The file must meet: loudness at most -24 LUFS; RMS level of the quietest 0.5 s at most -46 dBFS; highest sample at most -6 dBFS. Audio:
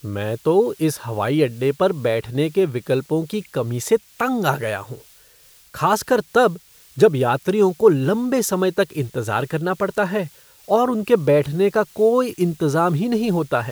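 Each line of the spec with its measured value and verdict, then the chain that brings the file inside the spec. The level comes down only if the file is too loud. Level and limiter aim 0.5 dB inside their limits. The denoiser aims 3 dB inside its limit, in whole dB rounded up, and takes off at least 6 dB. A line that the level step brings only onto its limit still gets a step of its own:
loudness -20.0 LUFS: fail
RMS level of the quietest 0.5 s -51 dBFS: OK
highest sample -1.5 dBFS: fail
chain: gain -4.5 dB; limiter -6.5 dBFS

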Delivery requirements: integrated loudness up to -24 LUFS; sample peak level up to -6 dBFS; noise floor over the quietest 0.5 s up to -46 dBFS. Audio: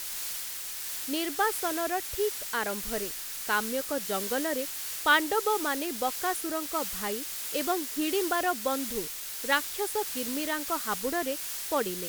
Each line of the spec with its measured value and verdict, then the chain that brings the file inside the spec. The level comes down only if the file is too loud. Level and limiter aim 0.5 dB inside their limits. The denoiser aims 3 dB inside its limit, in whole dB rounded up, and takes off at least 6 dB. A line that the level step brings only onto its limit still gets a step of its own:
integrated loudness -29.5 LUFS: OK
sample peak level -10.5 dBFS: OK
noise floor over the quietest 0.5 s -37 dBFS: fail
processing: denoiser 12 dB, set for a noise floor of -37 dBFS

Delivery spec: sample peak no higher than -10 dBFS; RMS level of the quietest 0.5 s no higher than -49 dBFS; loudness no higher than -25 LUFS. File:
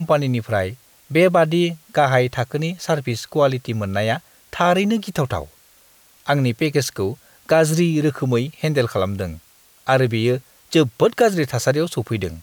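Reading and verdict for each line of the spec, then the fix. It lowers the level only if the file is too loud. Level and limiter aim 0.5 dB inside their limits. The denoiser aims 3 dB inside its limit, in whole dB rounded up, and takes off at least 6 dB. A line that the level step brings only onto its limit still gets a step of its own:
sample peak -5.0 dBFS: fail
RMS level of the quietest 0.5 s -53 dBFS: OK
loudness -20.0 LUFS: fail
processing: gain -5.5 dB

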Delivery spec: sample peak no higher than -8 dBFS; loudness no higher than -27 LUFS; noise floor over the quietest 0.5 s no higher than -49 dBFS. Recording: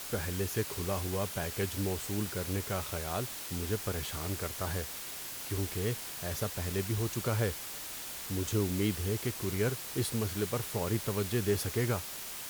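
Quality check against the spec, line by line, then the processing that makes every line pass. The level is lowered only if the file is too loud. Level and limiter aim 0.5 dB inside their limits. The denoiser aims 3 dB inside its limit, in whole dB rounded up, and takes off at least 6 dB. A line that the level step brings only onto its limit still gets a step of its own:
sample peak -18.0 dBFS: OK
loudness -34.0 LUFS: OK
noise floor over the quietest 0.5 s -42 dBFS: fail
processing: denoiser 10 dB, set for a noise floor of -42 dBFS

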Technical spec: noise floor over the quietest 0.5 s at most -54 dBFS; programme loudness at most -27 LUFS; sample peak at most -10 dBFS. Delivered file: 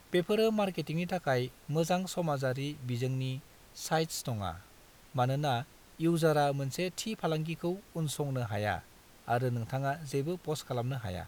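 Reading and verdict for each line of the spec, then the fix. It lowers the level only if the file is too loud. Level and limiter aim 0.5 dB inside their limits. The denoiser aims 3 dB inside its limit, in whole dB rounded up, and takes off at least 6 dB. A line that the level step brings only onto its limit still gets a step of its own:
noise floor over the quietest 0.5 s -57 dBFS: OK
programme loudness -33.0 LUFS: OK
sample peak -16.0 dBFS: OK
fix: none

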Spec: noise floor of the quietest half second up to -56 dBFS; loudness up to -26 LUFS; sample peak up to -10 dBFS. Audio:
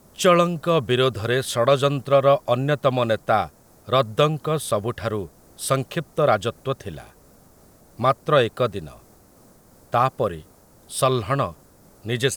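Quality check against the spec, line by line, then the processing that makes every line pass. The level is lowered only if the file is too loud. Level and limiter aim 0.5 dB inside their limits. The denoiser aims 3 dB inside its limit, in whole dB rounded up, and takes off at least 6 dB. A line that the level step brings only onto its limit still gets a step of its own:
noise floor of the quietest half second -53 dBFS: fail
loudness -22.0 LUFS: fail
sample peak -6.0 dBFS: fail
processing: gain -4.5 dB

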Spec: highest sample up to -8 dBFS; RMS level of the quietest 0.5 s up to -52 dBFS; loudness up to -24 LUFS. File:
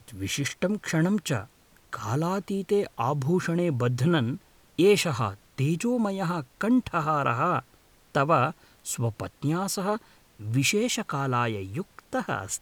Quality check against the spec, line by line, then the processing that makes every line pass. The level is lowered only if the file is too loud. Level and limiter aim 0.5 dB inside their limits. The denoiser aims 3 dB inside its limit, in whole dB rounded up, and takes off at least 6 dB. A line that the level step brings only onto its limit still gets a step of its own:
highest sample -10.0 dBFS: OK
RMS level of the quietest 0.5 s -59 dBFS: OK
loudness -27.0 LUFS: OK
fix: none

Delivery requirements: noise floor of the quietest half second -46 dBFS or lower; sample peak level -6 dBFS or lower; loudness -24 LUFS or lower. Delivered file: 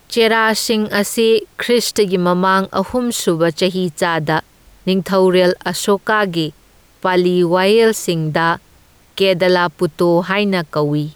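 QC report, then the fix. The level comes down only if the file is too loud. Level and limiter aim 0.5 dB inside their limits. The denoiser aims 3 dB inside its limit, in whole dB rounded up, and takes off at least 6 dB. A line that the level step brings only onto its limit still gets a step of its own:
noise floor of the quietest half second -49 dBFS: OK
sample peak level -4.0 dBFS: fail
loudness -15.5 LUFS: fail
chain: gain -9 dB

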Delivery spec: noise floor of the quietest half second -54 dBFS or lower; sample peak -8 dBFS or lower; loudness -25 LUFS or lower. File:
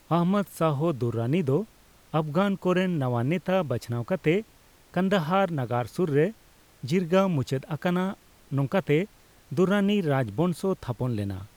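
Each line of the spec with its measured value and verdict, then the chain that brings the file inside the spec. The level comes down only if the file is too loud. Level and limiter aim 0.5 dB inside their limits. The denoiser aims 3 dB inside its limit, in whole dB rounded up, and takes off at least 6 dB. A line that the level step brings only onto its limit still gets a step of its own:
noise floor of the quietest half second -56 dBFS: OK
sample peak -10.0 dBFS: OK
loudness -26.5 LUFS: OK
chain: none

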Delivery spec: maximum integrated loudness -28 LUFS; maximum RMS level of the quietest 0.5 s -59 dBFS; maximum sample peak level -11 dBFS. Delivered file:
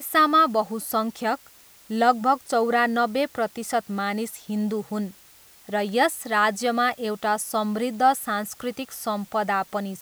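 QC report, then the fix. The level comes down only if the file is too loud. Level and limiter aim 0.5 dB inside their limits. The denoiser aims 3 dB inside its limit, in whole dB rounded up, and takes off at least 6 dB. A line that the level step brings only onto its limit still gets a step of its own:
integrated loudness -24.0 LUFS: fail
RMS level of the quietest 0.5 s -52 dBFS: fail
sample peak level -6.5 dBFS: fail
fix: denoiser 6 dB, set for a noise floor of -52 dBFS; gain -4.5 dB; limiter -11.5 dBFS

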